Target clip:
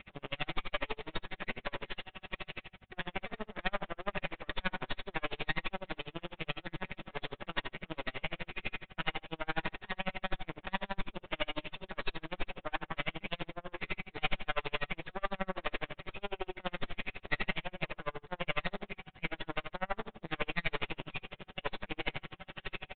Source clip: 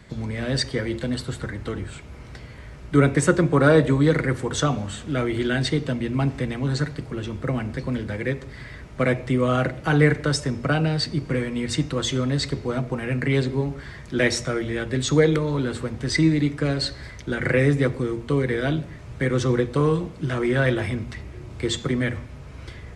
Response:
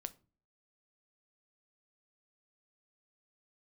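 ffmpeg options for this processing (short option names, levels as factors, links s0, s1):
-filter_complex "[0:a]equalizer=f=1700:t=o:w=2.7:g=-2.5,aecho=1:1:6.7:0.78,areverse,acompressor=threshold=0.0355:ratio=6,areverse,aeval=exprs='(tanh(28.2*val(0)+0.25)-tanh(0.25))/28.2':c=same,bandpass=f=2500:t=q:w=0.51:csg=0,aeval=exprs='0.0398*(cos(1*acos(clip(val(0)/0.0398,-1,1)))-cos(1*PI/2))+0.000794*(cos(3*acos(clip(val(0)/0.0398,-1,1)))-cos(3*PI/2))+0.0126*(cos(4*acos(clip(val(0)/0.0398,-1,1)))-cos(4*PI/2))+0.00501*(cos(8*acos(clip(val(0)/0.0398,-1,1)))-cos(8*PI/2))':c=same,asetrate=55563,aresample=44100,atempo=0.793701,aeval=exprs='val(0)+0.000708*(sin(2*PI*50*n/s)+sin(2*PI*2*50*n/s)/2+sin(2*PI*3*50*n/s)/3+sin(2*PI*4*50*n/s)/4+sin(2*PI*5*50*n/s)/5)':c=same,asplit=2[s0][s1];[s1]aecho=0:1:69|138|207|276:0.355|0.117|0.0386|0.0128[s2];[s0][s2]amix=inputs=2:normalize=0,aresample=8000,aresample=44100,aeval=exprs='val(0)*pow(10,-39*(0.5-0.5*cos(2*PI*12*n/s))/20)':c=same,volume=3.35"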